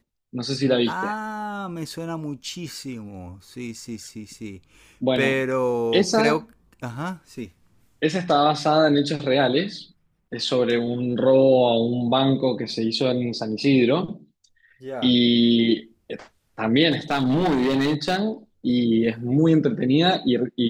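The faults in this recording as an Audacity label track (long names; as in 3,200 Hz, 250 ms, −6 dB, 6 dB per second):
16.910000	18.210000	clipping −17 dBFS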